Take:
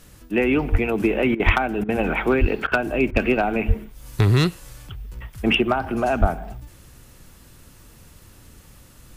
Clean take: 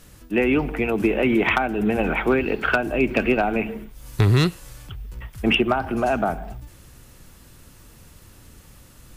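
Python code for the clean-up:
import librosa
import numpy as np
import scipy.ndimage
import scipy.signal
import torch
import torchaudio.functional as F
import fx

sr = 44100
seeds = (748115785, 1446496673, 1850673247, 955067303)

y = fx.fix_deplosive(x, sr, at_s=(0.71, 1.45, 2.4, 3.11, 3.67, 6.2))
y = fx.fix_interpolate(y, sr, at_s=(1.35, 1.84, 2.67, 3.11), length_ms=46.0)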